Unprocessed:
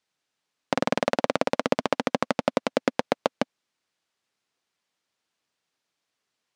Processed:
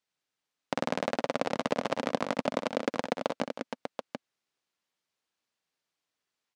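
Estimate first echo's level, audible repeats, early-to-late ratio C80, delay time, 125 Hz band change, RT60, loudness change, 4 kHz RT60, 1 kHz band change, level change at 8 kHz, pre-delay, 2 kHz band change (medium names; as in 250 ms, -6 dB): -10.0 dB, 4, no reverb, 62 ms, -5.0 dB, no reverb, -5.5 dB, no reverb, -5.0 dB, -5.0 dB, no reverb, -5.0 dB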